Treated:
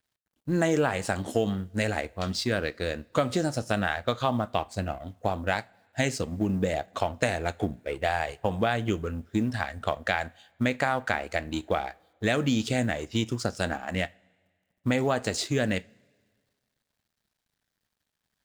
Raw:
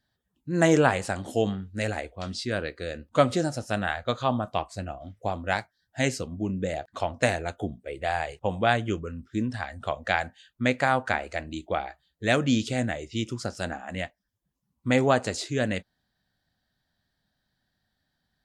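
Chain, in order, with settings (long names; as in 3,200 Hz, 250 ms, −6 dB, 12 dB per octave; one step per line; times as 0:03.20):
mu-law and A-law mismatch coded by A
in parallel at −1 dB: brickwall limiter −15 dBFS, peak gain reduction 9.5 dB
on the sum: downward compressor 4 to 1, threshold −22 dBFS, peak gain reduction 9.5 dB
coupled-rooms reverb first 0.28 s, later 1.8 s, from −20 dB, DRR 17.5 dB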